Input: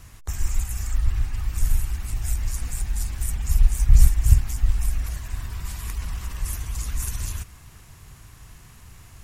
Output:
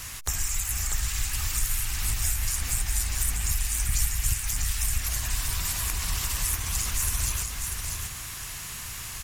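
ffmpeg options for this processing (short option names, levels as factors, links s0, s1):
-filter_complex "[0:a]acrossover=split=1100|3100[s0][s1][s2];[s0]acompressor=threshold=0.0398:ratio=4[s3];[s1]acompressor=threshold=0.00141:ratio=4[s4];[s2]acompressor=threshold=0.00501:ratio=4[s5];[s3][s4][s5]amix=inputs=3:normalize=0,tiltshelf=f=970:g=-8,asplit=2[s6][s7];[s7]asetrate=66075,aresample=44100,atempo=0.66742,volume=0.178[s8];[s6][s8]amix=inputs=2:normalize=0,asplit=2[s9][s10];[s10]aecho=0:1:643:0.562[s11];[s9][s11]amix=inputs=2:normalize=0,volume=2.66"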